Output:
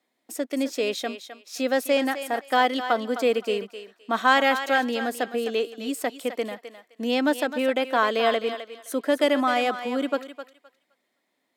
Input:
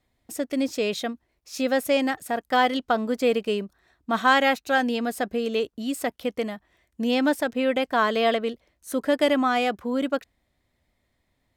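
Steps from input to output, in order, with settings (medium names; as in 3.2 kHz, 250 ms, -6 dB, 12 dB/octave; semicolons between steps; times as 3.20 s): high-pass 240 Hz 24 dB/octave; thinning echo 259 ms, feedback 21%, high-pass 560 Hz, level -9.5 dB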